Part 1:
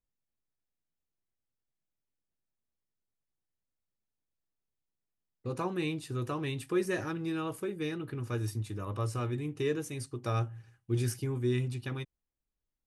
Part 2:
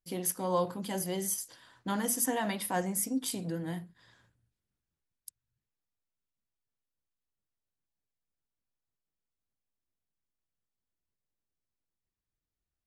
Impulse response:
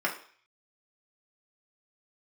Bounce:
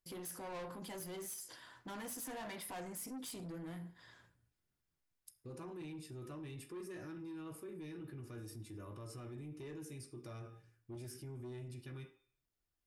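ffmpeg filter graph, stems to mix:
-filter_complex "[0:a]equalizer=f=1.2k:t=o:w=2.8:g=-12,volume=-9.5dB,asplit=2[a][b];[b]volume=-3.5dB[c];[1:a]volume=-1dB,asplit=2[d][e];[e]volume=-15.5dB[f];[2:a]atrim=start_sample=2205[g];[c][f]amix=inputs=2:normalize=0[h];[h][g]afir=irnorm=-1:irlink=0[i];[a][d][i]amix=inputs=3:normalize=0,asoftclip=type=tanh:threshold=-35dB,alimiter=level_in=18.5dB:limit=-24dB:level=0:latency=1:release=14,volume=-18.5dB"

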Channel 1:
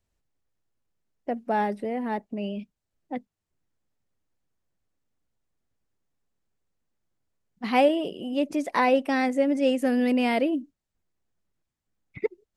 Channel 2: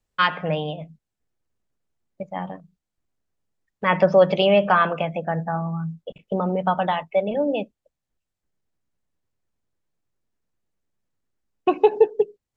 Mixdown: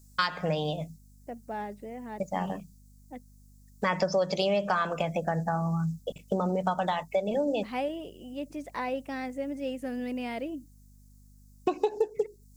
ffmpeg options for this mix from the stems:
-filter_complex "[0:a]volume=-11dB[a];[1:a]aexciter=amount=9.7:drive=7.7:freq=4.5k,aeval=exprs='val(0)+0.00178*(sin(2*PI*50*n/s)+sin(2*PI*2*50*n/s)/2+sin(2*PI*3*50*n/s)/3+sin(2*PI*4*50*n/s)/4+sin(2*PI*5*50*n/s)/5)':c=same,volume=0.5dB[b];[a][b]amix=inputs=2:normalize=0,acompressor=threshold=-25dB:ratio=4"

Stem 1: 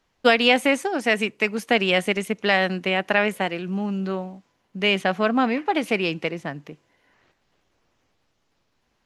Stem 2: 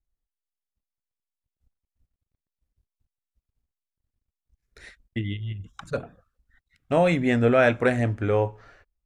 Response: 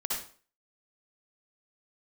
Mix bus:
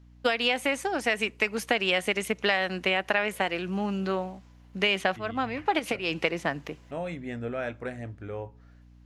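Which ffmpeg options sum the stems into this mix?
-filter_complex "[0:a]lowshelf=f=270:g=-10.5,dynaudnorm=f=130:g=17:m=13dB,volume=-2dB[a];[1:a]volume=-14dB,asplit=2[b][c];[c]apad=whole_len=399254[d];[a][d]sidechaincompress=threshold=-56dB:ratio=5:attack=16:release=150[e];[e][b]amix=inputs=2:normalize=0,aeval=exprs='val(0)+0.00251*(sin(2*PI*60*n/s)+sin(2*PI*2*60*n/s)/2+sin(2*PI*3*60*n/s)/3+sin(2*PI*4*60*n/s)/4+sin(2*PI*5*60*n/s)/5)':c=same,acompressor=threshold=-21dB:ratio=5"

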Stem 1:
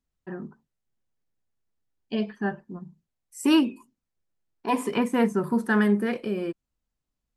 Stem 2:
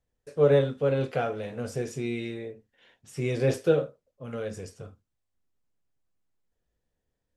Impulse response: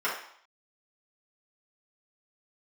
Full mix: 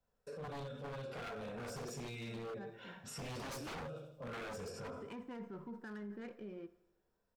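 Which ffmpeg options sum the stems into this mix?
-filter_complex "[0:a]adynamicsmooth=sensitivity=4:basefreq=1.5k,adelay=150,volume=-18.5dB,asplit=3[a][b][c];[b]volume=-22.5dB[d];[c]volume=-21dB[e];[1:a]acrossover=split=160|3000[f][g][h];[g]acompressor=threshold=-39dB:ratio=5[i];[f][i][h]amix=inputs=3:normalize=0,equalizer=f=400:t=o:w=0.33:g=-4,equalizer=f=2k:t=o:w=0.33:g=-12,equalizer=f=3.15k:t=o:w=0.33:g=-7,equalizer=f=6.3k:t=o:w=0.33:g=-6,equalizer=f=10k:t=o:w=0.33:g=-9,dynaudnorm=f=240:g=11:m=7dB,volume=-3.5dB,asplit=3[j][k][l];[k]volume=-3.5dB[m];[l]volume=-13.5dB[n];[2:a]atrim=start_sample=2205[o];[d][m]amix=inputs=2:normalize=0[p];[p][o]afir=irnorm=-1:irlink=0[q];[e][n]amix=inputs=2:normalize=0,aecho=0:1:86|172|258|344|430|516|602|688:1|0.54|0.292|0.157|0.085|0.0459|0.0248|0.0134[r];[a][j][q][r]amix=inputs=4:normalize=0,aeval=exprs='0.0299*(abs(mod(val(0)/0.0299+3,4)-2)-1)':c=same,alimiter=level_in=15.5dB:limit=-24dB:level=0:latency=1:release=16,volume=-15.5dB"

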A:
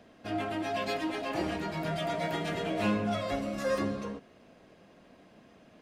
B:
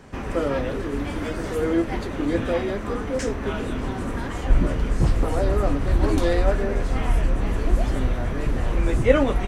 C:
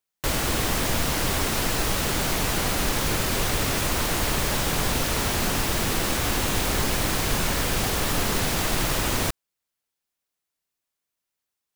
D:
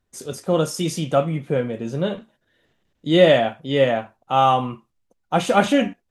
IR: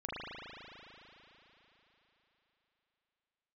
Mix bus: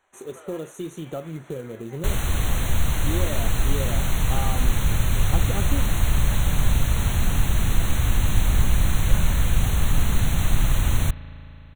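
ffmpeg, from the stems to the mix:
-filter_complex "[1:a]highpass=f=650:w=0.5412,highpass=f=650:w=1.3066,volume=-16dB[a];[2:a]adelay=1800,volume=-5.5dB,asplit=2[b][c];[c]volume=-18dB[d];[3:a]equalizer=f=370:t=o:w=0.8:g=13.5,acompressor=threshold=-20dB:ratio=3,acrusher=bits=5:mode=log:mix=0:aa=0.000001,volume=-10dB[e];[4:a]atrim=start_sample=2205[f];[d][f]afir=irnorm=-1:irlink=0[g];[a][b][e][g]amix=inputs=4:normalize=0,asubboost=boost=6.5:cutoff=140,asuperstop=centerf=5000:order=12:qfactor=3.1"

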